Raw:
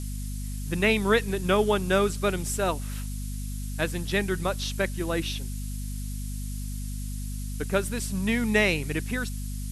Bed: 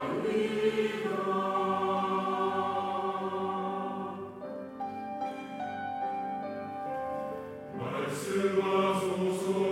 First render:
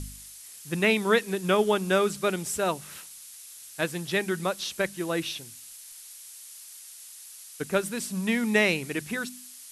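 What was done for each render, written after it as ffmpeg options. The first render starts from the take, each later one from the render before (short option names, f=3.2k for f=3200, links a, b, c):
-af "bandreject=f=50:t=h:w=4,bandreject=f=100:t=h:w=4,bandreject=f=150:t=h:w=4,bandreject=f=200:t=h:w=4,bandreject=f=250:t=h:w=4"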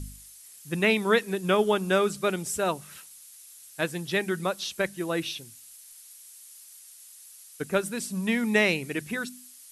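-af "afftdn=nr=6:nf=-46"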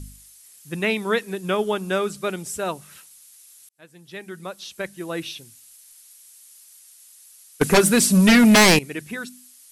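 -filter_complex "[0:a]asettb=1/sr,asplit=3[a][b][c];[a]atrim=end=7.614[d];[b]atrim=start=7.61:end=8.79,asetpts=PTS-STARTPTS,afade=t=in:d=0.004:c=qsin,afade=t=out:st=1.176:d=0.004:c=qsin,aeval=exprs='0.335*sin(PI/2*4.47*val(0)/0.335)':c=same[e];[c]atrim=start=8.786[f];[d][e]acrossfade=d=0.004:c1=hsin:c2=qsin[g];[g][f]acrossfade=d=0.004:c1=qsin:c2=hsin,asplit=2[h][i];[h]atrim=end=3.69,asetpts=PTS-STARTPTS,afade=t=out:st=3.686:d=0.004:c=hsin[j];[i]atrim=start=3.69,asetpts=PTS-STARTPTS,afade=t=in:d=1.54[k];[j][k]concat=n=2:v=0:a=1"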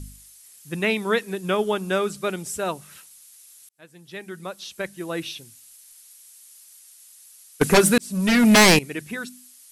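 -filter_complex "[0:a]asplit=2[a][b];[a]atrim=end=7.98,asetpts=PTS-STARTPTS,afade=t=out:st=7.976:d=0.004:c=hsin[c];[b]atrim=start=7.98,asetpts=PTS-STARTPTS,afade=t=in:d=0.61[d];[c][d]concat=n=2:v=0:a=1"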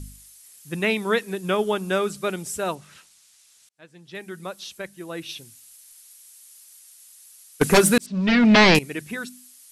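-filter_complex "[0:a]asettb=1/sr,asplit=3[a][b][c];[a]atrim=end=2.754[d];[b]atrim=start=2.75:end=4.15,asetpts=PTS-STARTPTS,afade=t=in:d=0.004:c=qsin,afade=t=out:st=1.396:d=0.004:c=qsin,lowpass=6.6k[e];[c]atrim=start=4.146[f];[d][e]acrossfade=d=0.004:c1=hsin:c2=qsin[g];[g][f]acrossfade=d=0.004:c1=qsin:c2=hsin,asettb=1/sr,asplit=3[h][i][j];[h]atrim=end=8.064[k];[i]atrim=start=8.06:end=8.75,asetpts=PTS-STARTPTS,afade=t=in:d=0.004:c=qsin,afade=t=out:st=0.686:d=0.004:c=qsin,lowpass=f=4.5k:w=0.5412,lowpass=f=4.5k:w=1.3066[l];[j]atrim=start=8.746[m];[k][l]acrossfade=d=0.004:c1=hsin:c2=qsin[n];[n][m]acrossfade=d=0.004:c1=qsin:c2=hsin,asplit=3[o][p][q];[o]atrim=end=4.782[r];[p]atrim=start=4.778:end=5.292,asetpts=PTS-STARTPTS,volume=-4.5dB[s];[q]atrim=start=5.288[t];[r][s]acrossfade=d=0.004:c1=hsin:c2=hsin[u];[u][t]acrossfade=d=0.004:c1=hsin:c2=hsin"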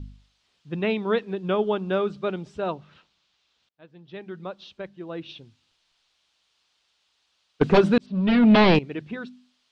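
-af "lowpass=f=3.5k:w=0.5412,lowpass=f=3.5k:w=1.3066,equalizer=f=2k:t=o:w=1.1:g=-9"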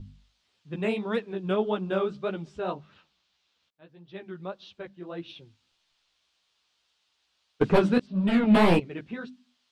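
-filter_complex "[0:a]acrossover=split=2000[a][b];[b]asoftclip=type=tanh:threshold=-29dB[c];[a][c]amix=inputs=2:normalize=0,flanger=delay=8.8:depth=9.3:regen=-3:speed=1.7:shape=triangular"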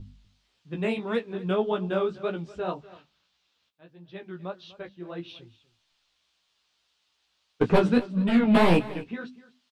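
-filter_complex "[0:a]asplit=2[a][b];[b]adelay=17,volume=-9dB[c];[a][c]amix=inputs=2:normalize=0,aecho=1:1:246:0.112"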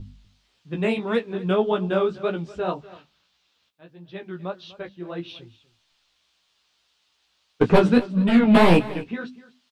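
-af "volume=4.5dB"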